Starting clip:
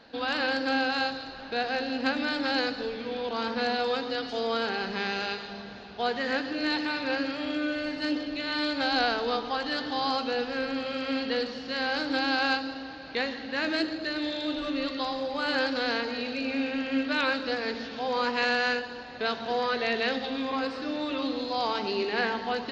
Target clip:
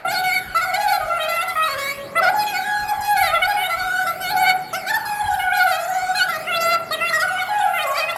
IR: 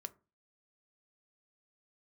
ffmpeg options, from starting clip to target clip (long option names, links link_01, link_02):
-filter_complex "[0:a]aphaser=in_gain=1:out_gain=1:delay=4:decay=0.54:speed=0.16:type=triangular,asetrate=122598,aresample=44100,asplit=2[link_01][link_02];[1:a]atrim=start_sample=2205,lowpass=3100[link_03];[link_02][link_03]afir=irnorm=-1:irlink=0,volume=12dB[link_04];[link_01][link_04]amix=inputs=2:normalize=0"